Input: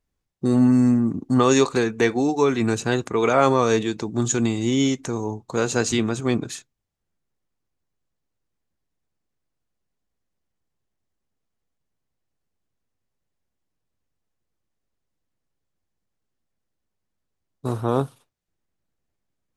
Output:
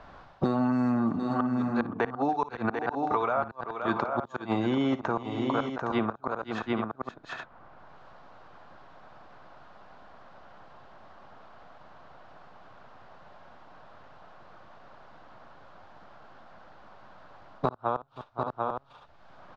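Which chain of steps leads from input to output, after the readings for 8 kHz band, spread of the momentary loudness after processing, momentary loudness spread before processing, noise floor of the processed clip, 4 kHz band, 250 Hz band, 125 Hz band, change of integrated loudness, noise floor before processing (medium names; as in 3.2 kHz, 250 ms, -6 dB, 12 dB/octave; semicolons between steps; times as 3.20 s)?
under -30 dB, 9 LU, 10 LU, -55 dBFS, -12.5 dB, -8.0 dB, -10.5 dB, -9.0 dB, -79 dBFS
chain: low-pass 4.1 kHz 24 dB/octave; high-order bell 940 Hz +13.5 dB; reverse; compression 12:1, threshold -19 dBFS, peak gain reduction 18.5 dB; reverse; inverted gate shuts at -12 dBFS, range -38 dB; on a send: multi-tap echo 56/521/742/814 ms -16/-17/-9/-13.5 dB; on the sum: three bands compressed up and down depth 100%; trim -2 dB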